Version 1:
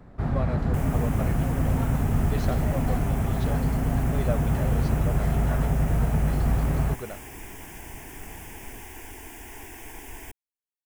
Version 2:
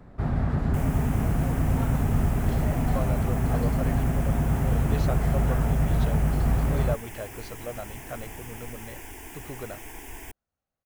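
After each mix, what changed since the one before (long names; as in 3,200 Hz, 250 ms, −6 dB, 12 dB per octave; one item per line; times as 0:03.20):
speech: entry +2.60 s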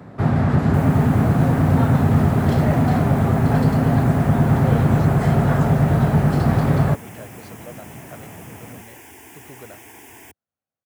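speech −3.5 dB
first sound +10.5 dB
master: add high-pass filter 93 Hz 24 dB per octave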